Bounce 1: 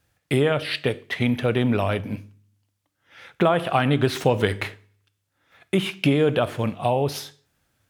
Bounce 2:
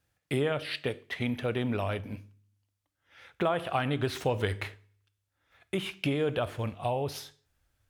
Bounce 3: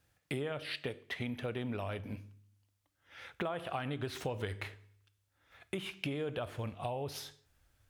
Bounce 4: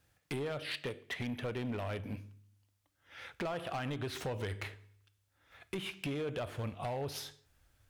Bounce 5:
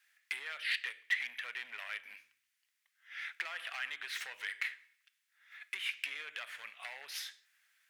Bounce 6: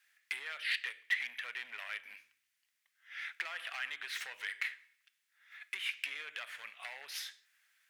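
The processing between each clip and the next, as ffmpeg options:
-af "asubboost=boost=7:cutoff=63,volume=0.398"
-af "acompressor=threshold=0.00708:ratio=2.5,volume=1.41"
-af "asoftclip=type=hard:threshold=0.02,volume=1.19"
-af "highpass=f=1900:t=q:w=3.1"
-af "asoftclip=type=hard:threshold=0.0794"

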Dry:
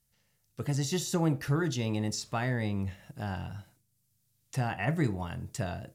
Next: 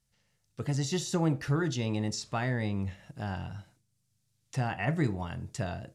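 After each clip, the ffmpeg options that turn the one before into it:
-af "lowpass=8400"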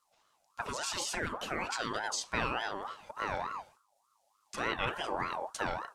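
-af "afftfilt=real='re*lt(hypot(re,im),0.178)':imag='im*lt(hypot(re,im),0.178)':win_size=1024:overlap=0.75,aeval=exprs='val(0)*sin(2*PI*960*n/s+960*0.3/3.4*sin(2*PI*3.4*n/s))':c=same,volume=1.58"

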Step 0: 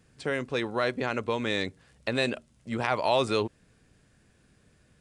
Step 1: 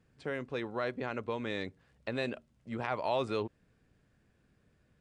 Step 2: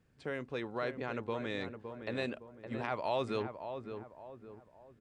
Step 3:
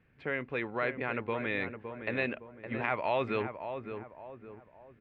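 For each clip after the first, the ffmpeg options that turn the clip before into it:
-af "lowpass=f=2500:p=1,volume=0.473"
-filter_complex "[0:a]asplit=2[s0][s1];[s1]adelay=563,lowpass=f=1400:p=1,volume=0.422,asplit=2[s2][s3];[s3]adelay=563,lowpass=f=1400:p=1,volume=0.42,asplit=2[s4][s5];[s5]adelay=563,lowpass=f=1400:p=1,volume=0.42,asplit=2[s6][s7];[s7]adelay=563,lowpass=f=1400:p=1,volume=0.42,asplit=2[s8][s9];[s9]adelay=563,lowpass=f=1400:p=1,volume=0.42[s10];[s0][s2][s4][s6][s8][s10]amix=inputs=6:normalize=0,volume=0.794"
-af "lowpass=f=2300:t=q:w=2.6,volume=1.33"

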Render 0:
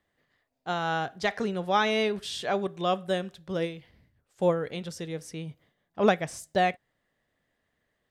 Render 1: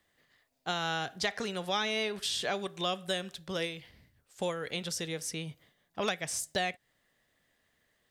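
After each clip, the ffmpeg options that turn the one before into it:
-filter_complex "[0:a]acrossover=split=570|1700[s0][s1][s2];[s0]acompressor=threshold=0.0126:ratio=4[s3];[s1]acompressor=threshold=0.0112:ratio=4[s4];[s2]acompressor=threshold=0.0112:ratio=4[s5];[s3][s4][s5]amix=inputs=3:normalize=0,highshelf=f=2200:g=9.5"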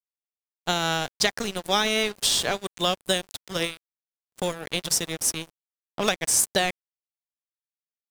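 -af "crystalizer=i=7:c=0,aeval=exprs='sgn(val(0))*max(abs(val(0))-0.0251,0)':c=same,tiltshelf=f=1400:g=7,volume=1.68"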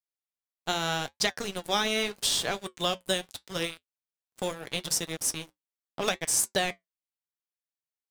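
-af "flanger=delay=5.8:depth=3.2:regen=-67:speed=0.79:shape=triangular"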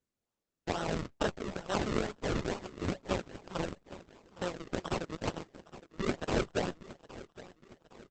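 -af "acrusher=samples=38:mix=1:aa=0.000001:lfo=1:lforange=38:lforate=2.2,aecho=1:1:814|1628|2442|3256:0.158|0.0761|0.0365|0.0175,volume=0.631" -ar 48000 -c:a libopus -b:a 10k

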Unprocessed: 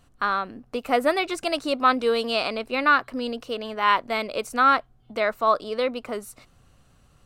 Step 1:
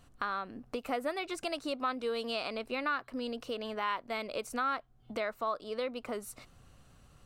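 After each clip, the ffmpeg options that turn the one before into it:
-af "acompressor=threshold=0.0178:ratio=2.5,volume=0.841"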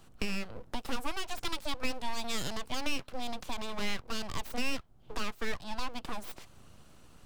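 -filter_complex "[0:a]aeval=exprs='abs(val(0))':c=same,equalizer=f=1800:w=2.9:g=-3,acrossover=split=170|3000[s0][s1][s2];[s1]acompressor=threshold=0.00501:ratio=1.5[s3];[s0][s3][s2]amix=inputs=3:normalize=0,volume=1.78"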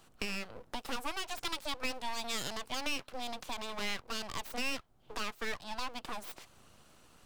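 -af "lowshelf=f=270:g=-9"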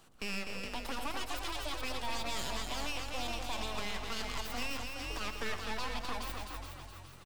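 -filter_complex "[0:a]asplit=2[s0][s1];[s1]asplit=5[s2][s3][s4][s5][s6];[s2]adelay=419,afreqshift=44,volume=0.398[s7];[s3]adelay=838,afreqshift=88,volume=0.158[s8];[s4]adelay=1257,afreqshift=132,volume=0.0638[s9];[s5]adelay=1676,afreqshift=176,volume=0.0254[s10];[s6]adelay=2095,afreqshift=220,volume=0.0102[s11];[s7][s8][s9][s10][s11]amix=inputs=5:normalize=0[s12];[s0][s12]amix=inputs=2:normalize=0,alimiter=level_in=1.78:limit=0.0631:level=0:latency=1:release=11,volume=0.562,asplit=2[s13][s14];[s14]aecho=0:1:116.6|250.7:0.282|0.562[s15];[s13][s15]amix=inputs=2:normalize=0"

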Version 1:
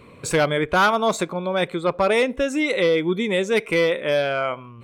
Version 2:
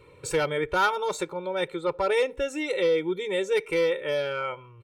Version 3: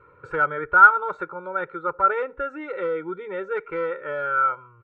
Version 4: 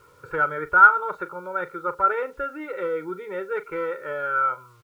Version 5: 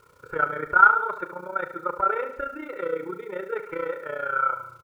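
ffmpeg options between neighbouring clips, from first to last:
-af "aecho=1:1:2.2:0.96,volume=0.355"
-af "lowpass=f=1400:t=q:w=10,volume=0.596"
-filter_complex "[0:a]asplit=2[s0][s1];[s1]adelay=39,volume=0.211[s2];[s0][s2]amix=inputs=2:normalize=0,acrusher=bits=9:mix=0:aa=0.000001,volume=0.891"
-af "tremolo=f=30:d=0.824,aecho=1:1:73|146|219|292|365:0.266|0.133|0.0665|0.0333|0.0166,volume=1.19"

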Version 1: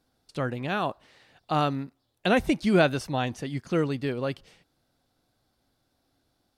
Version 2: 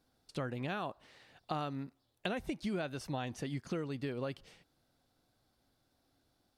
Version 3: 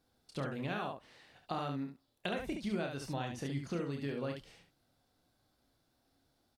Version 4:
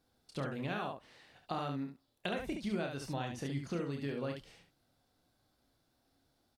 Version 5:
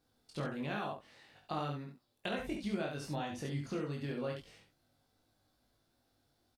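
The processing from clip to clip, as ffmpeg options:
-af "acompressor=threshold=0.0282:ratio=8,volume=0.708"
-af "aecho=1:1:29|70:0.473|0.531,volume=0.841"
-af anull
-filter_complex "[0:a]asplit=2[s0][s1];[s1]adelay=20,volume=0.708[s2];[s0][s2]amix=inputs=2:normalize=0,volume=0.794"

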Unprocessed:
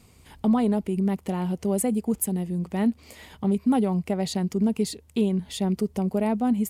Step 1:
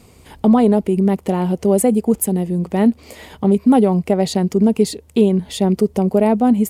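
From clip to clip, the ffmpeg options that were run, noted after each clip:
-af "equalizer=f=480:w=0.82:g=6,volume=2.11"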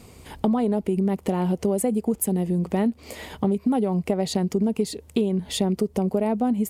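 -af "acompressor=threshold=0.1:ratio=5"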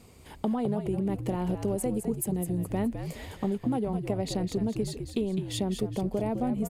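-filter_complex "[0:a]asplit=5[s0][s1][s2][s3][s4];[s1]adelay=208,afreqshift=-72,volume=0.422[s5];[s2]adelay=416,afreqshift=-144,volume=0.164[s6];[s3]adelay=624,afreqshift=-216,volume=0.0638[s7];[s4]adelay=832,afreqshift=-288,volume=0.0251[s8];[s0][s5][s6][s7][s8]amix=inputs=5:normalize=0,volume=0.447"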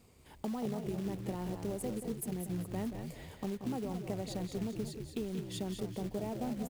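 -filter_complex "[0:a]acrusher=bits=4:mode=log:mix=0:aa=0.000001,asplit=2[s0][s1];[s1]adelay=180.8,volume=0.355,highshelf=f=4000:g=-4.07[s2];[s0][s2]amix=inputs=2:normalize=0,volume=0.355"

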